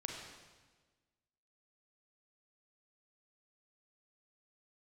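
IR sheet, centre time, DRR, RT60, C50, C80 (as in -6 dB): 64 ms, 0.5 dB, 1.4 s, 2.0 dB, 4.0 dB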